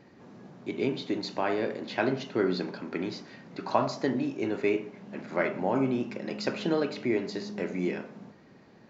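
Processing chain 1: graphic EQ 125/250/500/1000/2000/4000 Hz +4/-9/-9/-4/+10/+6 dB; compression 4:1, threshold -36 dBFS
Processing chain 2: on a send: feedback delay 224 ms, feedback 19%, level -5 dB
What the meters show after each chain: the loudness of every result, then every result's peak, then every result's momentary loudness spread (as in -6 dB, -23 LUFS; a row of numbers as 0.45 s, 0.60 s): -39.0 LUFS, -29.5 LUFS; -19.5 dBFS, -9.5 dBFS; 8 LU, 9 LU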